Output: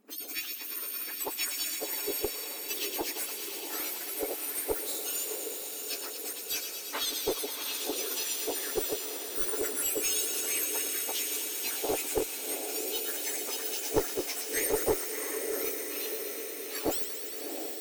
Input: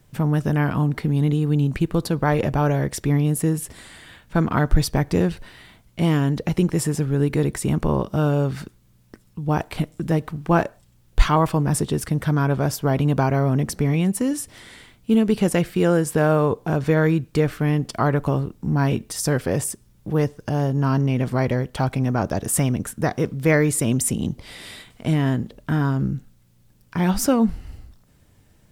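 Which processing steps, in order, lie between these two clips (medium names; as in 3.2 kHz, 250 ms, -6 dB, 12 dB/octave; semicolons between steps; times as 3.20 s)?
spectrum inverted on a logarithmic axis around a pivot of 2 kHz; granular stretch 0.62×, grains 129 ms; echo that smears into a reverb 712 ms, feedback 63%, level -7 dB; one-sided clip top -22 dBFS; on a send: feedback echo behind a high-pass 115 ms, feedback 85%, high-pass 2.1 kHz, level -7 dB; on the sum: trim -5.5 dB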